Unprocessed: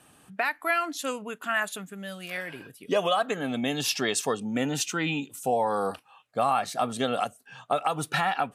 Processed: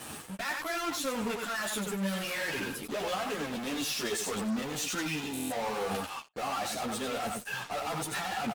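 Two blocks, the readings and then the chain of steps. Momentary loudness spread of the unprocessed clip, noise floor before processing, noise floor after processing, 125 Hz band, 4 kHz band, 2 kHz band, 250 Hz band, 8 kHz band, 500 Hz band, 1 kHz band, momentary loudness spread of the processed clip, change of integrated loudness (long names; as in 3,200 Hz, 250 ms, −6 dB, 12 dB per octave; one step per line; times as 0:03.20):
10 LU, −59 dBFS, −45 dBFS, −4.0 dB, −3.0 dB, −4.5 dB, −2.5 dB, −1.5 dB, −6.5 dB, −7.5 dB, 3 LU, −5.0 dB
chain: asymmetric clip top −21 dBFS, bottom −16.5 dBFS
reversed playback
downward compressor 8 to 1, threshold −36 dBFS, peak gain reduction 14.5 dB
reversed playback
single-tap delay 92 ms −9 dB
in parallel at −11 dB: fuzz pedal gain 57 dB, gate −58 dBFS
on the sum: low-shelf EQ 68 Hz −6.5 dB
buffer that repeats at 0:05.32, samples 1,024, times 7
string-ensemble chorus
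level −6.5 dB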